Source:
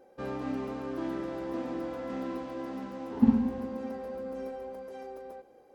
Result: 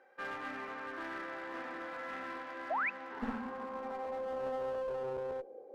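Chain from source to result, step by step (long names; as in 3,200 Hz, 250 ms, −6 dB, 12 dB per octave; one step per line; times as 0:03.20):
band-pass filter sweep 1,700 Hz → 490 Hz, 0:03.12–0:05.03
asymmetric clip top −47.5 dBFS
sound drawn into the spectrogram rise, 0:02.70–0:02.90, 580–2,700 Hz −42 dBFS
level +9 dB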